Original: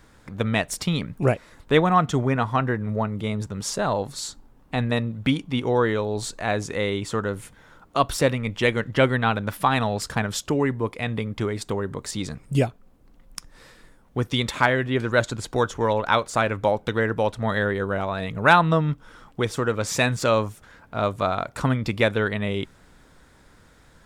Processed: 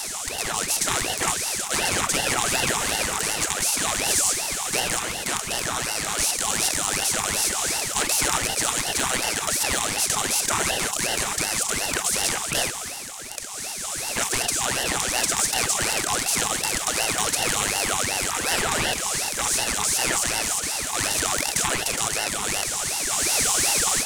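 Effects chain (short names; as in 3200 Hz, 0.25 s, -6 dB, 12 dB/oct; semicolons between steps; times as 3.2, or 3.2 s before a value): per-bin compression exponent 0.2; inverse Chebyshev band-stop 370–800 Hz, stop band 40 dB; spectral gate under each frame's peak -15 dB weak; ten-band EQ 1000 Hz +9 dB, 2000 Hz -8 dB, 4000 Hz -7 dB, 8000 Hz +7 dB; AGC; soft clip -8.5 dBFS, distortion -19 dB; ring modulator with a swept carrier 960 Hz, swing 90%, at 2.7 Hz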